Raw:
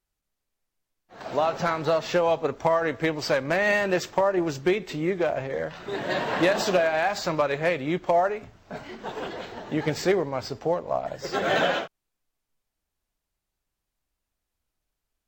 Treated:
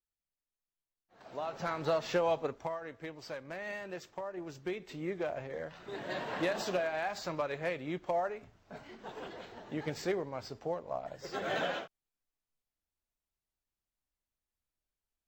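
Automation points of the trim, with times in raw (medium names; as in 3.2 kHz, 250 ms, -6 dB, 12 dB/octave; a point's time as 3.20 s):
1.32 s -16.5 dB
1.85 s -7.5 dB
2.40 s -7.5 dB
2.80 s -18.5 dB
4.29 s -18.5 dB
5.11 s -11 dB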